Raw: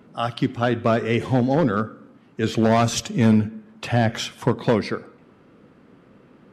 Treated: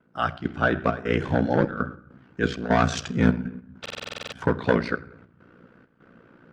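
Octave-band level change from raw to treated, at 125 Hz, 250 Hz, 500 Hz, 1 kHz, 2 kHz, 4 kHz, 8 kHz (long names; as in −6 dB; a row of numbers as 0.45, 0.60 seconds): −4.5, −4.5, −3.5, −2.0, +1.5, −5.5, −9.0 decibels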